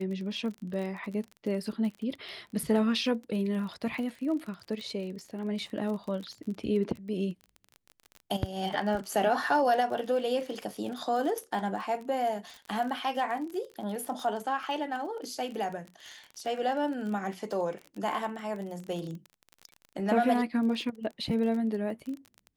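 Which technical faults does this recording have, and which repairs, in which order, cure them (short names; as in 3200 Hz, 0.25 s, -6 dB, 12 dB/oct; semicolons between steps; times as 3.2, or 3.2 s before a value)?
crackle 30/s -36 dBFS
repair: de-click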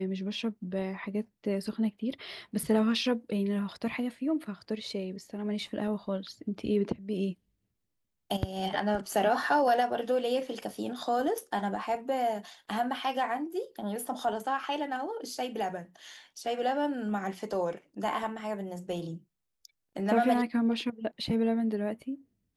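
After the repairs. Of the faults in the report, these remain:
none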